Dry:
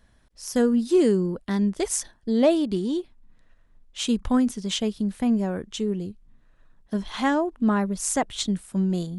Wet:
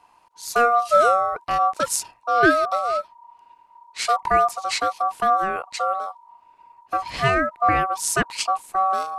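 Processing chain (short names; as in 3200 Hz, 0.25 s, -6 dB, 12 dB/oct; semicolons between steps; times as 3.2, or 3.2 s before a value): ring modulator 950 Hz; gain +5.5 dB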